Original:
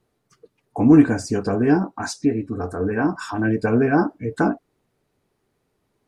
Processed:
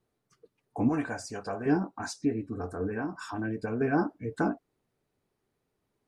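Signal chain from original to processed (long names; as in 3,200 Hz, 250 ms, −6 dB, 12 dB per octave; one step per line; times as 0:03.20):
0:00.89–0:01.66: low shelf with overshoot 480 Hz −9 dB, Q 1.5
0:02.86–0:03.81: downward compressor 5 to 1, threshold −21 dBFS, peak gain reduction 7 dB
level −8.5 dB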